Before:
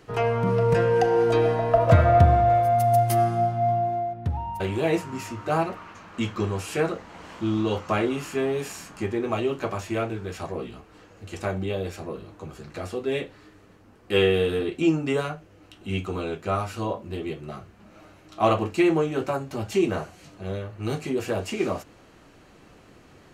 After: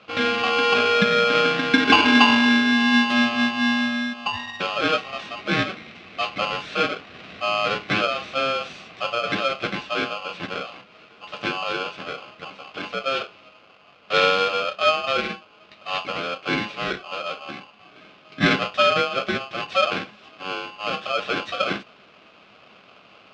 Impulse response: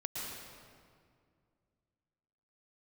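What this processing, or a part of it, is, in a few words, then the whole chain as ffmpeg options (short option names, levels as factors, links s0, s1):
ring modulator pedal into a guitar cabinet: -af "aeval=exprs='val(0)*sgn(sin(2*PI*940*n/s))':c=same,highpass=95,equalizer=f=200:t=q:w=4:g=6,equalizer=f=900:t=q:w=4:g=-9,equalizer=f=1800:t=q:w=4:g=-5,equalizer=f=2600:t=q:w=4:g=6,lowpass=f=4300:w=0.5412,lowpass=f=4300:w=1.3066,volume=1.33"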